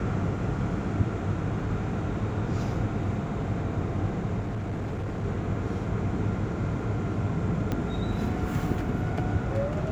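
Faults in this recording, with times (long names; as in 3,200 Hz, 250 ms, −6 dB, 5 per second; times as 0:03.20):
0:04.40–0:05.25: clipping −28 dBFS
0:07.72: click −16 dBFS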